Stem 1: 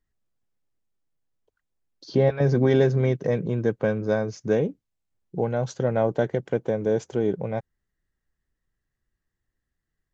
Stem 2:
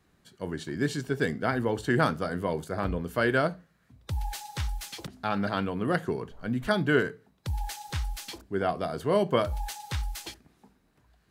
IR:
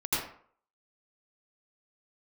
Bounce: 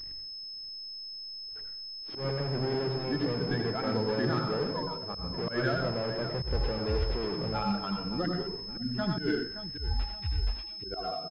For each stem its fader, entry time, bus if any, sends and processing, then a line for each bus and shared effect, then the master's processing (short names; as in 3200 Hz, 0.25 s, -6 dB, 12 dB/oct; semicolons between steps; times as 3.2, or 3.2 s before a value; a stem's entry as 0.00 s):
-19.5 dB, 0.00 s, send -11.5 dB, echo send -12.5 dB, bell 1100 Hz -9.5 dB 0.84 oct; power-law curve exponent 0.35
-1.0 dB, 2.30 s, send -8.5 dB, echo send -10 dB, per-bin expansion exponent 2; limiter -23 dBFS, peak gain reduction 9 dB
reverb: on, RT60 0.55 s, pre-delay 76 ms
echo: feedback echo 0.571 s, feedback 35%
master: auto swell 0.105 s; pulse-width modulation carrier 5200 Hz